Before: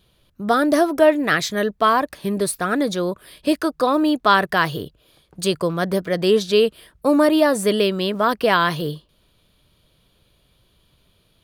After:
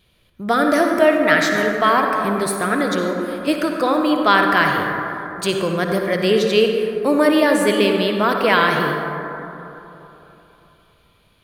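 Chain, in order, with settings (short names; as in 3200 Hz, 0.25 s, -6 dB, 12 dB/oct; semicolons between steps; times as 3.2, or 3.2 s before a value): bell 2200 Hz +7.5 dB 0.68 oct; reverb RT60 3.4 s, pre-delay 48 ms, DRR 2 dB; gain -1 dB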